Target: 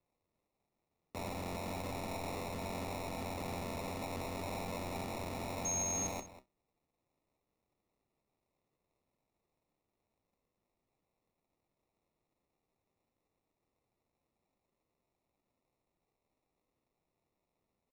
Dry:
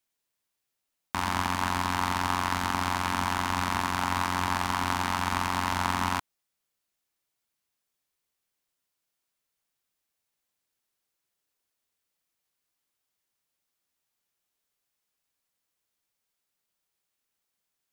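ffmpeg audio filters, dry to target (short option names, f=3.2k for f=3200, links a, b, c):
-filter_complex "[0:a]alimiter=limit=-13.5dB:level=0:latency=1,flanger=delay=7.6:depth=1.6:regen=-76:speed=0.94:shape=sinusoidal,acrusher=samples=28:mix=1:aa=0.000001,asoftclip=type=tanh:threshold=-37.5dB,asettb=1/sr,asplit=3[a][b][c];[a]atrim=end=5.654[d];[b]atrim=start=5.65:end=6.07,asetpts=PTS-STARTPTS,afade=t=in:d=0.004:c=qsin,afade=t=out:st=0.416:d=0.004:c=qsin,aeval=exprs='val(0)+0.0178*sin(2*PI*6500*n/s)':c=same[e];[c]atrim=start=6.066[f];[d][e]acrossfade=d=0.004:c1=hsin:c2=qsin[g];[g][f]acrossfade=d=0.004:c1=qsin:c2=hsin,asplit=2[h][i];[i]adelay=192.4,volume=-14dB,highshelf=f=4k:g=-4.33[j];[h][j]amix=inputs=2:normalize=0,volume=1.5dB"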